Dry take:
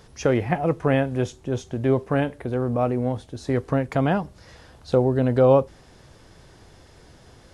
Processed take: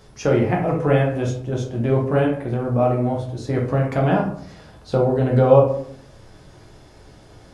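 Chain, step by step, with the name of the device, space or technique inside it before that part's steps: bathroom (reverberation RT60 0.60 s, pre-delay 8 ms, DRR -2 dB); trim -1.5 dB

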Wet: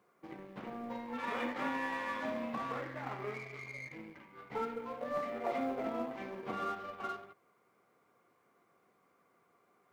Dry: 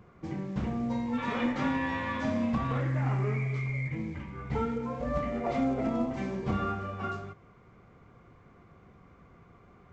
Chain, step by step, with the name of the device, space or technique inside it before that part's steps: phone line with mismatched companding (band-pass 370–3300 Hz; companding laws mixed up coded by A); trim -1.5 dB

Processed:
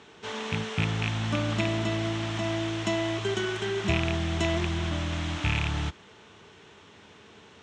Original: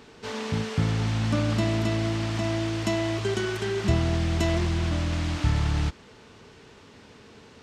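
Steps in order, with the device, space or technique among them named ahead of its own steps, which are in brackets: car door speaker with a rattle (rattle on loud lows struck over -21 dBFS, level -16 dBFS; cabinet simulation 90–8000 Hz, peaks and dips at 130 Hz -7 dB, 250 Hz -8 dB, 500 Hz -5 dB, 3.3 kHz +4 dB, 4.7 kHz -8 dB)

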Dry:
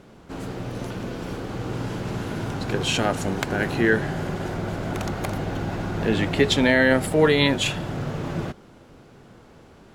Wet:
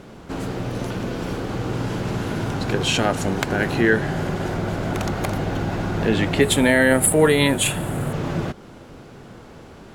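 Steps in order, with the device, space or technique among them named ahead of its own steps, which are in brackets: parallel compression (in parallel at 0 dB: compression, threshold -34 dBFS, peak gain reduction 19.5 dB); 6.41–8.13 s: on the sum: resonant high shelf 7.2 kHz +10 dB, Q 3; trim +1 dB

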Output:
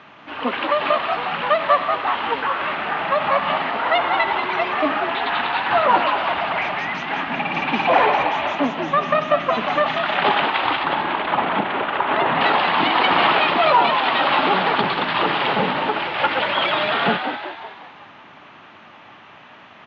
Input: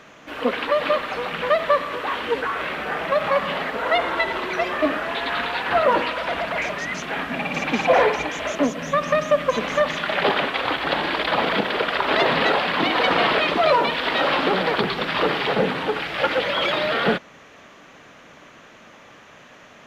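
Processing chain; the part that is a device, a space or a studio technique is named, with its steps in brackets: 10.83–12.41 s: distance through air 370 m; frequency-shifting delay pedal into a guitar cabinet (frequency-shifting echo 186 ms, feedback 50%, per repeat +73 Hz, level -7 dB; cabinet simulation 86–4200 Hz, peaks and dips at 97 Hz +5 dB, 490 Hz -7 dB, 870 Hz +7 dB, 1.2 kHz +3 dB, 2.8 kHz +3 dB)

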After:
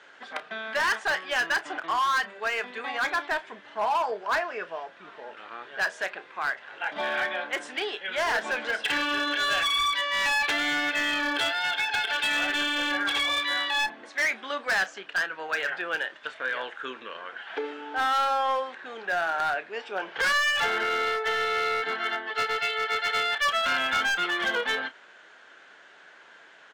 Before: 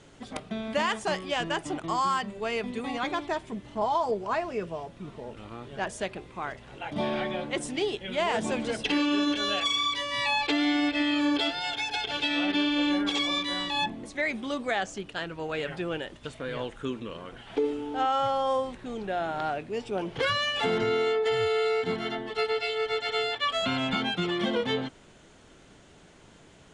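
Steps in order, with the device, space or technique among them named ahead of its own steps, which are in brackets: megaphone (band-pass 680–4000 Hz; peaking EQ 1.6 kHz +11.5 dB 0.42 oct; hard clipper -25 dBFS, distortion -11 dB; doubling 31 ms -13.5 dB); trim +3.5 dB

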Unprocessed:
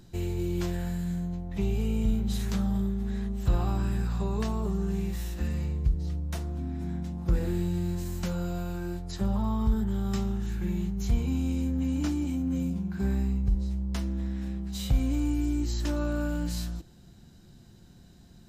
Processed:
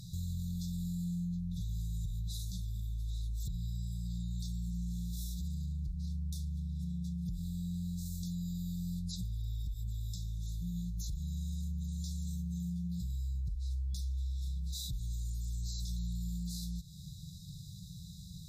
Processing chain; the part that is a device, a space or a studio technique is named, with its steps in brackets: FFT band-reject 190–3400 Hz; podcast mastering chain (high-pass 85 Hz 6 dB/octave; compression 3:1, threshold -46 dBFS, peak gain reduction 16.5 dB; peak limiter -40.5 dBFS, peak gain reduction 8 dB; trim +10 dB; MP3 96 kbps 44.1 kHz)

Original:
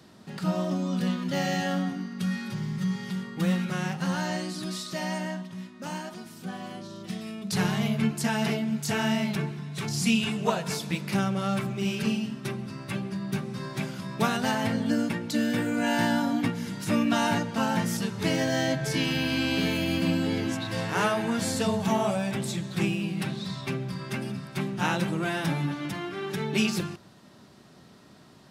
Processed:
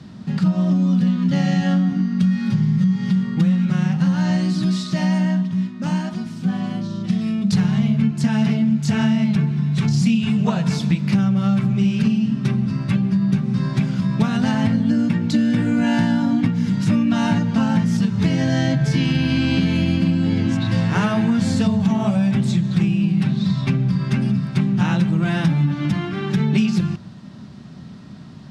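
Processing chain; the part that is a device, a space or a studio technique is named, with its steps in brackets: jukebox (low-pass 6.2 kHz 12 dB/octave; resonant low shelf 280 Hz +9.5 dB, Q 1.5; compression, threshold -21 dBFS, peak gain reduction 10.5 dB); trim +6.5 dB

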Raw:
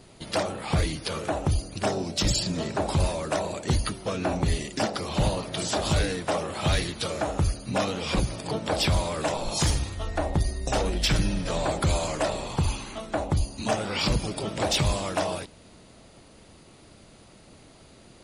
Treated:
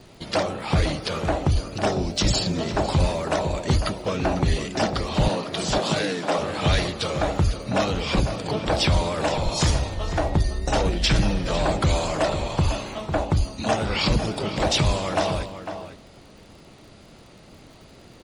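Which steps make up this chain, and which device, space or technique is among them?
lo-fi chain (low-pass 6.7 kHz 12 dB/octave; wow and flutter; crackle 59 per s -46 dBFS); 5.28–6.39 s: high-pass 150 Hz 24 dB/octave; echo from a far wall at 86 m, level -9 dB; trim +3.5 dB

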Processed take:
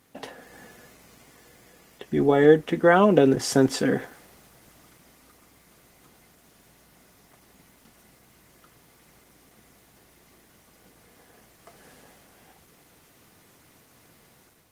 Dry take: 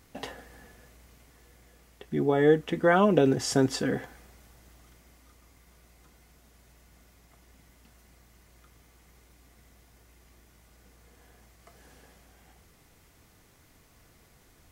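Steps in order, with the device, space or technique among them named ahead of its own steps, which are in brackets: video call (high-pass 140 Hz 12 dB/octave; level rider gain up to 6.5 dB; Opus 20 kbps 48 kHz)

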